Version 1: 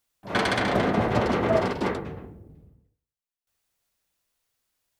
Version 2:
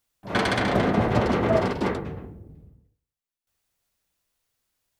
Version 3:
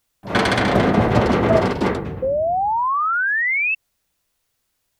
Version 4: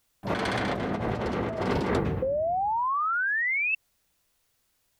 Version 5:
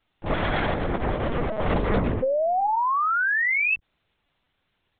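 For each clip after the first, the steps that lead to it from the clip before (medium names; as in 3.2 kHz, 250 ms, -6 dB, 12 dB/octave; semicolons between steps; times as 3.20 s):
bass shelf 240 Hz +4 dB
painted sound rise, 2.22–3.75 s, 510–2700 Hz -25 dBFS; trim +5.5 dB
compressor with a negative ratio -23 dBFS, ratio -1; trim -4.5 dB
LPC vocoder at 8 kHz pitch kept; trim +4 dB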